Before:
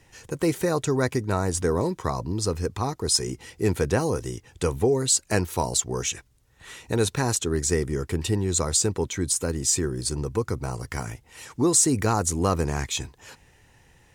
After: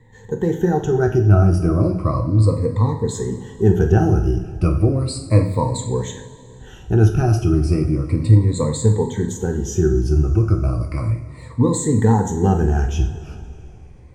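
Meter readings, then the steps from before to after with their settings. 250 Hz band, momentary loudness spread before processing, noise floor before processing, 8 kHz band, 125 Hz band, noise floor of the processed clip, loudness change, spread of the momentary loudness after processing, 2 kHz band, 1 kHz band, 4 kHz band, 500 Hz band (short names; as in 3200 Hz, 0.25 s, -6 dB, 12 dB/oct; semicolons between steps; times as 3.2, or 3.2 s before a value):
+8.0 dB, 11 LU, -59 dBFS, -8.5 dB, +13.0 dB, -41 dBFS, +6.5 dB, 10 LU, -1.0 dB, +3.5 dB, -7.5 dB, +5.0 dB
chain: moving spectral ripple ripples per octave 1, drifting -0.34 Hz, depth 20 dB; tilt -4 dB/oct; two-slope reverb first 0.52 s, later 3 s, from -16 dB, DRR 2 dB; gain -4.5 dB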